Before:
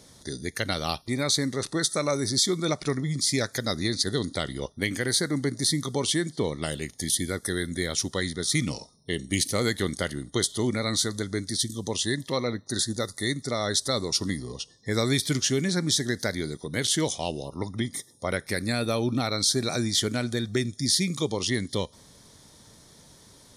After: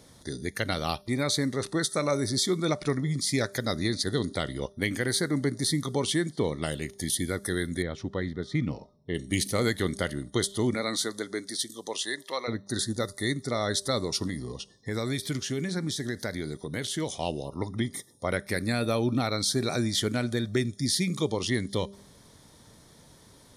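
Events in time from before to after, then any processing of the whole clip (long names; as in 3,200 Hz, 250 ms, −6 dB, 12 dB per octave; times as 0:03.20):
0:07.82–0:09.15: head-to-tape spacing loss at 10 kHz 31 dB
0:10.74–0:12.47: high-pass filter 220 Hz → 680 Hz
0:14.27–0:17.13: downward compressor 2 to 1, threshold −29 dBFS
whole clip: parametric band 6,200 Hz −5.5 dB 1.6 octaves; hum removal 198.3 Hz, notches 3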